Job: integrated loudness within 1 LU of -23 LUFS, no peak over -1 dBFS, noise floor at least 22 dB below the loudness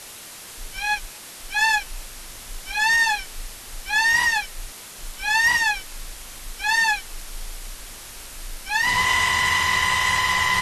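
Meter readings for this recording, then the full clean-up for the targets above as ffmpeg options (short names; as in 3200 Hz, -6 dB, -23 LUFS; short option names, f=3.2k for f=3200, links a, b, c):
noise floor -40 dBFS; noise floor target -42 dBFS; loudness -20.0 LUFS; peak -8.0 dBFS; loudness target -23.0 LUFS
-> -af "afftdn=nr=6:nf=-40"
-af "volume=-3dB"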